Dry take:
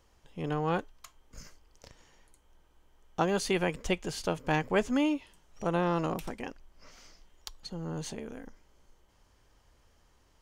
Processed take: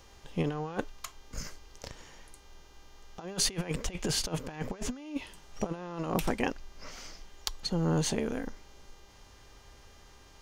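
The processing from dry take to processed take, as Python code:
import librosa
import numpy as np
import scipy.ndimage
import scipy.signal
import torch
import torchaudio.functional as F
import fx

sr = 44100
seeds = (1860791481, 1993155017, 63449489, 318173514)

y = fx.over_compress(x, sr, threshold_db=-35.0, ratio=-0.5)
y = fx.dmg_buzz(y, sr, base_hz=400.0, harmonics=17, level_db=-67.0, tilt_db=-1, odd_only=False)
y = F.gain(torch.from_numpy(y), 4.0).numpy()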